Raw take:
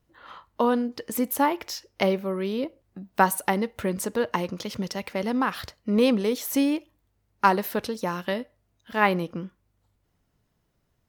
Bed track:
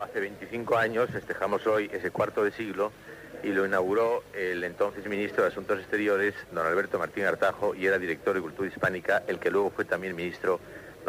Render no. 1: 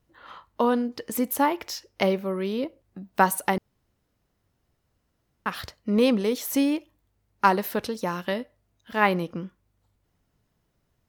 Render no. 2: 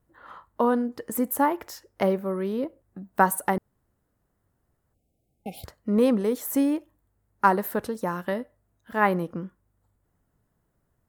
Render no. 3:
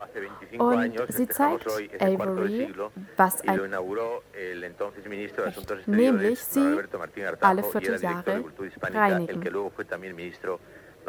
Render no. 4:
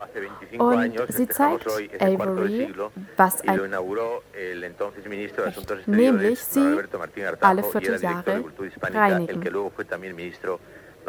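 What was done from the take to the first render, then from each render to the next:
0:03.58–0:05.46: fill with room tone
0:04.94–0:05.65: time-frequency box erased 820–2,100 Hz; flat-topped bell 3,700 Hz −10 dB
mix in bed track −4.5 dB
level +3 dB

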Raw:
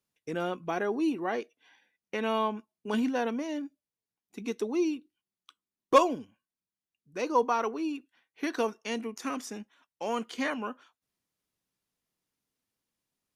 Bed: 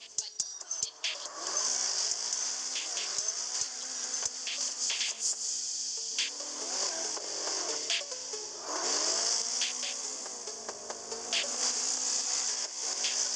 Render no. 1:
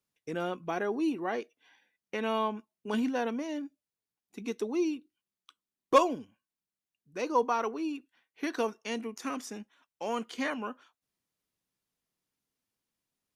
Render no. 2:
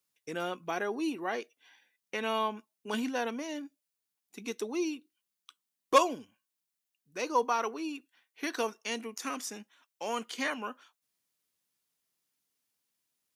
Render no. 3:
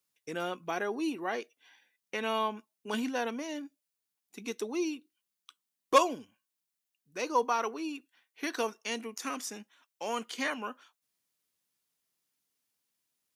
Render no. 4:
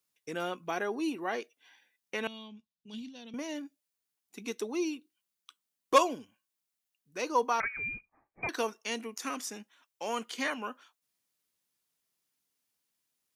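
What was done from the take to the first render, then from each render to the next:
level −1.5 dB
spectral tilt +2 dB per octave
no processing that can be heard
0:02.27–0:03.34: drawn EQ curve 170 Hz 0 dB, 320 Hz −16 dB, 480 Hz −20 dB, 1,500 Hz −28 dB, 3,600 Hz −4 dB, 10,000 Hz −22 dB; 0:07.60–0:08.49: voice inversion scrambler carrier 2,700 Hz

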